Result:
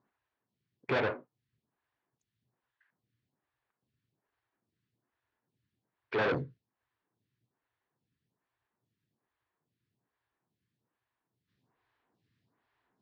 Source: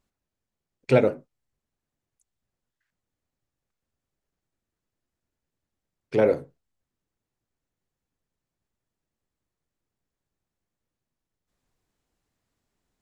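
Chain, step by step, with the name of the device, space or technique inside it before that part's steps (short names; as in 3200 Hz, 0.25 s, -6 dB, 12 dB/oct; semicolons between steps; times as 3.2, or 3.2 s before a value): vibe pedal into a guitar amplifier (photocell phaser 1.2 Hz; tube stage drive 32 dB, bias 0.4; speaker cabinet 100–4200 Hz, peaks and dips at 120 Hz +9 dB, 550 Hz -5 dB, 1000 Hz +5 dB, 1700 Hz +5 dB); gain +6 dB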